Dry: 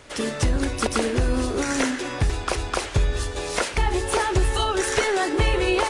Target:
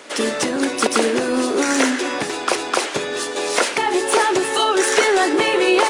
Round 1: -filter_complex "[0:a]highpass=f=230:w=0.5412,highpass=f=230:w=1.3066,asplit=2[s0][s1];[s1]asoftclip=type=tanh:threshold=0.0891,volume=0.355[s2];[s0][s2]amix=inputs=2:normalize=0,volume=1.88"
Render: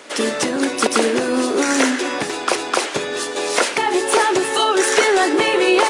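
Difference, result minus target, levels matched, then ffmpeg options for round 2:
saturation: distortion -6 dB
-filter_complex "[0:a]highpass=f=230:w=0.5412,highpass=f=230:w=1.3066,asplit=2[s0][s1];[s1]asoftclip=type=tanh:threshold=0.0376,volume=0.355[s2];[s0][s2]amix=inputs=2:normalize=0,volume=1.88"

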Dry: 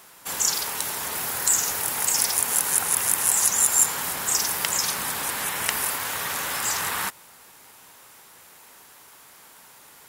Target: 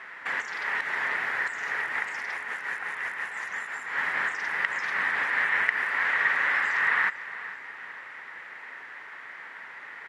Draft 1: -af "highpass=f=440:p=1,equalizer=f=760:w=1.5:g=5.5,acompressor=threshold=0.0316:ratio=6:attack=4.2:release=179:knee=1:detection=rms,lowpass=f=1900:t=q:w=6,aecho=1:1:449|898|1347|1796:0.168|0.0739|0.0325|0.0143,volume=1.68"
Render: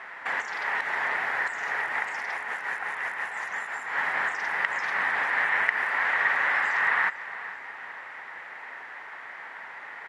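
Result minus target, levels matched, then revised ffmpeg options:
1 kHz band +3.0 dB
-af "highpass=f=440:p=1,equalizer=f=760:w=1.5:g=-2,acompressor=threshold=0.0316:ratio=6:attack=4.2:release=179:knee=1:detection=rms,lowpass=f=1900:t=q:w=6,aecho=1:1:449|898|1347|1796:0.168|0.0739|0.0325|0.0143,volume=1.68"

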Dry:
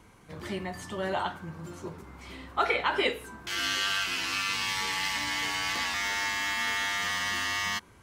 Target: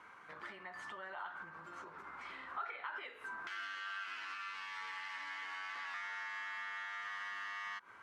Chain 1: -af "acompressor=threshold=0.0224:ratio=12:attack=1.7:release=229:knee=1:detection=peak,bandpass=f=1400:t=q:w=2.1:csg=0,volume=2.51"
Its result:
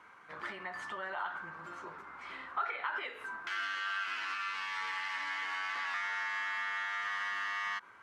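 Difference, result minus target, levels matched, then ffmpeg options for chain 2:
compression: peak gain reduction -7.5 dB
-af "acompressor=threshold=0.00891:ratio=12:attack=1.7:release=229:knee=1:detection=peak,bandpass=f=1400:t=q:w=2.1:csg=0,volume=2.51"

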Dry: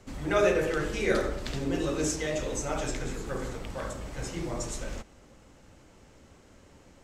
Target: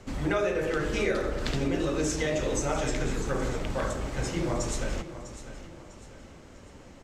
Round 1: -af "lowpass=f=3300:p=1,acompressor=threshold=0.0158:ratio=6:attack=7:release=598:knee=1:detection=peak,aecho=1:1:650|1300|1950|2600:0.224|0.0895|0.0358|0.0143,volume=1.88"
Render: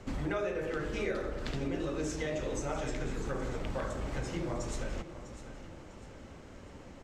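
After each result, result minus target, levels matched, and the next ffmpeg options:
compression: peak gain reduction +6.5 dB; 8 kHz band -3.5 dB
-af "lowpass=f=3300:p=1,acompressor=threshold=0.0398:ratio=6:attack=7:release=598:knee=1:detection=peak,aecho=1:1:650|1300|1950|2600:0.224|0.0895|0.0358|0.0143,volume=1.88"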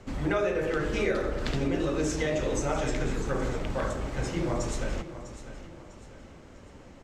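8 kHz band -3.5 dB
-af "lowpass=f=6800:p=1,acompressor=threshold=0.0398:ratio=6:attack=7:release=598:knee=1:detection=peak,aecho=1:1:650|1300|1950|2600:0.224|0.0895|0.0358|0.0143,volume=1.88"

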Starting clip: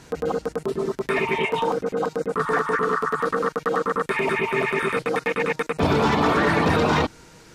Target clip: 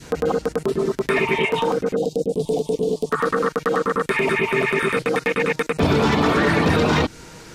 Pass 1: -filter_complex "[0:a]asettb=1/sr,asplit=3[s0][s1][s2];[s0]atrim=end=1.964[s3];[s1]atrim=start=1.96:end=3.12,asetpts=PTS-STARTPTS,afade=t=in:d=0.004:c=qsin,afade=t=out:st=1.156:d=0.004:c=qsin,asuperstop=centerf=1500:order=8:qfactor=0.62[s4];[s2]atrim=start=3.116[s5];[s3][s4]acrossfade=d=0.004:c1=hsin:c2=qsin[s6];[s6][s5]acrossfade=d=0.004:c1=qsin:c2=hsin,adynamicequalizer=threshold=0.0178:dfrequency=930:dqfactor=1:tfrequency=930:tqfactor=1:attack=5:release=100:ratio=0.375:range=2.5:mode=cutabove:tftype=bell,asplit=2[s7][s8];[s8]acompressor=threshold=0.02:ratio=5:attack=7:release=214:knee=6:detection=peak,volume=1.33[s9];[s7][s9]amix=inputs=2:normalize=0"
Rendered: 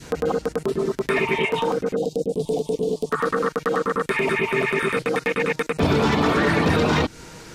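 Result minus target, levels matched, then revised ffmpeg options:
compression: peak gain reduction +5.5 dB
-filter_complex "[0:a]asettb=1/sr,asplit=3[s0][s1][s2];[s0]atrim=end=1.964[s3];[s1]atrim=start=1.96:end=3.12,asetpts=PTS-STARTPTS,afade=t=in:d=0.004:c=qsin,afade=t=out:st=1.156:d=0.004:c=qsin,asuperstop=centerf=1500:order=8:qfactor=0.62[s4];[s2]atrim=start=3.116[s5];[s3][s4]acrossfade=d=0.004:c1=hsin:c2=qsin[s6];[s6][s5]acrossfade=d=0.004:c1=qsin:c2=hsin,adynamicequalizer=threshold=0.0178:dfrequency=930:dqfactor=1:tfrequency=930:tqfactor=1:attack=5:release=100:ratio=0.375:range=2.5:mode=cutabove:tftype=bell,asplit=2[s7][s8];[s8]acompressor=threshold=0.0447:ratio=5:attack=7:release=214:knee=6:detection=peak,volume=1.33[s9];[s7][s9]amix=inputs=2:normalize=0"

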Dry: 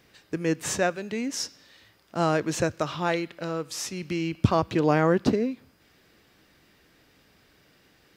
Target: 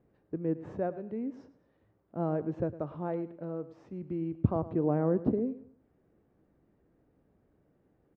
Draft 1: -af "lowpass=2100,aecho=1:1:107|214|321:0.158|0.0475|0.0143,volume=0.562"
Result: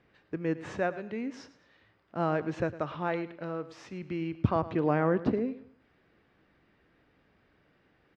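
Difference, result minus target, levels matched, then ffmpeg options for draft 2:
2 kHz band +14.5 dB
-af "lowpass=620,aecho=1:1:107|214|321:0.158|0.0475|0.0143,volume=0.562"

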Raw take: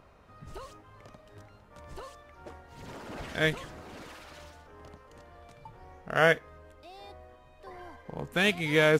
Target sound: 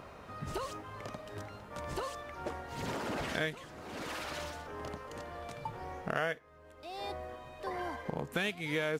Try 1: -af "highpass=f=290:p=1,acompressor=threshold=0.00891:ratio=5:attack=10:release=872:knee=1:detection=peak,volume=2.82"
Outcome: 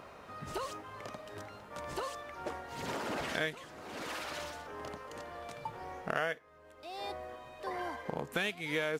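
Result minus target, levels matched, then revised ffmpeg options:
125 Hz band -4.5 dB
-af "highpass=f=110:p=1,acompressor=threshold=0.00891:ratio=5:attack=10:release=872:knee=1:detection=peak,volume=2.82"

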